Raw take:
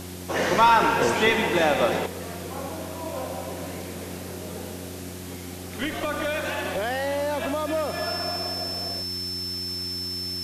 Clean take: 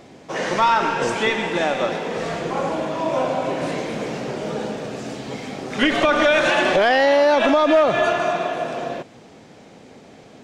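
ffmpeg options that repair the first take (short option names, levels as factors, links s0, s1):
-af "bandreject=f=90.2:t=h:w=4,bandreject=f=180.4:t=h:w=4,bandreject=f=270.6:t=h:w=4,bandreject=f=360.8:t=h:w=4,bandreject=f=5300:w=30,afwtdn=0.0079,asetnsamples=n=441:p=0,asendcmd='2.06 volume volume 11.5dB',volume=1"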